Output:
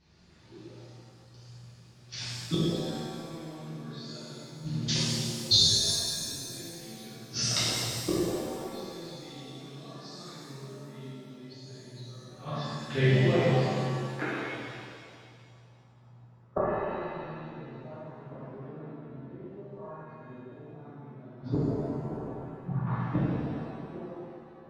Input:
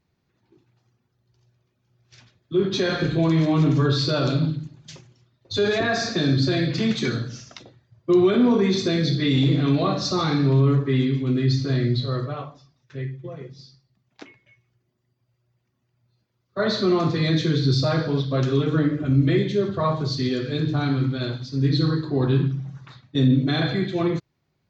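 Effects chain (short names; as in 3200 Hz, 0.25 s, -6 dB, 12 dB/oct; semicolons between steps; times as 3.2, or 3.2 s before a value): flipped gate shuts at -20 dBFS, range -36 dB; low-pass sweep 5200 Hz -> 910 Hz, 12.14–15.3; shimmer reverb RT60 2.1 s, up +7 st, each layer -8 dB, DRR -9.5 dB; gain +2.5 dB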